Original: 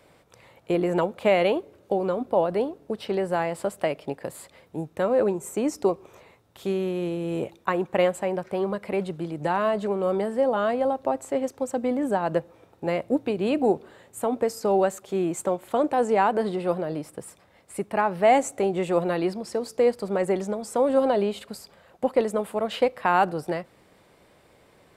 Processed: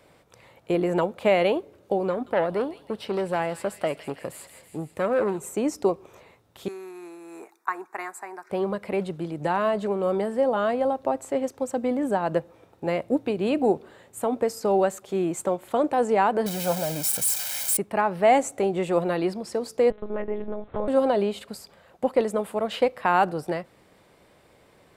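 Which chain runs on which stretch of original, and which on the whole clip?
0:02.10–0:05.46: delay with a high-pass on its return 163 ms, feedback 63%, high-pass 2,400 Hz, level −8.5 dB + saturating transformer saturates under 920 Hz
0:06.68–0:08.50: high-pass filter 400 Hz 24 dB per octave + phaser with its sweep stopped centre 1,300 Hz, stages 4
0:16.46–0:17.77: spike at every zero crossing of −20.5 dBFS + comb filter 1.3 ms, depth 71%
0:19.90–0:20.88: low-pass filter 2,100 Hz 6 dB per octave + downward compressor 3 to 1, threshold −25 dBFS + one-pitch LPC vocoder at 8 kHz 210 Hz
whole clip: no processing

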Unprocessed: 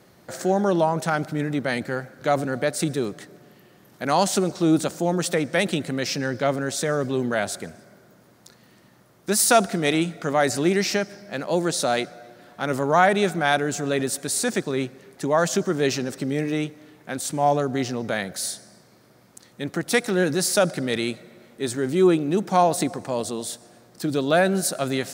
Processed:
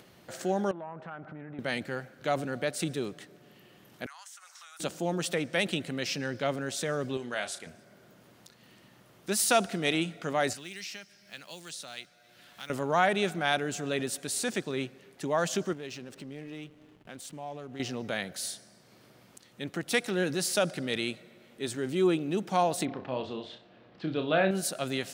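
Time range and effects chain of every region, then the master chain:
0:00.71–0:01.59: downward compressor, threshold −31 dBFS + low-pass with resonance 1,400 Hz, resonance Q 1.5 + saturating transformer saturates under 590 Hz
0:04.06–0:04.80: inverse Chebyshev high-pass filter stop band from 360 Hz, stop band 60 dB + flat-topped bell 3,400 Hz −9 dB 1.1 octaves + downward compressor, threshold −39 dBFS
0:07.17–0:07.67: low-pass filter 12,000 Hz 24 dB per octave + low-shelf EQ 420 Hz −11.5 dB + double-tracking delay 33 ms −9.5 dB
0:10.53–0:12.70: one scale factor per block 7 bits + guitar amp tone stack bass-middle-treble 5-5-5 + multiband upward and downward compressor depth 70%
0:15.73–0:17.80: downward compressor 2 to 1, threshold −38 dBFS + slack as between gear wheels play −44 dBFS
0:22.85–0:24.51: low-pass filter 3,500 Hz 24 dB per octave + flutter between parallel walls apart 5.4 metres, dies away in 0.27 s
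whole clip: parametric band 2,900 Hz +7.5 dB 0.66 octaves; upward compression, threshold −42 dBFS; level −8 dB

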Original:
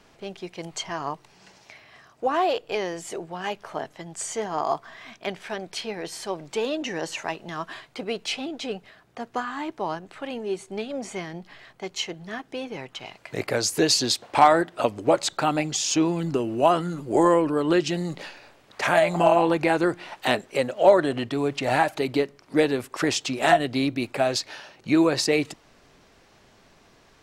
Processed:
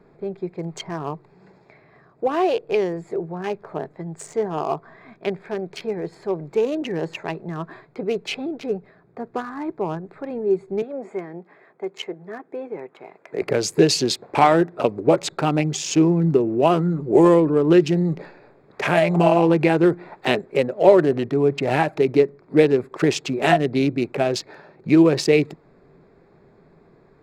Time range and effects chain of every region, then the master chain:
0:10.82–0:13.42: high-pass filter 330 Hz + parametric band 4,400 Hz −8.5 dB 0.66 octaves
whole clip: adaptive Wiener filter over 15 samples; graphic EQ with 15 bands 160 Hz +11 dB, 400 Hz +10 dB, 2,500 Hz +6 dB; level −1 dB

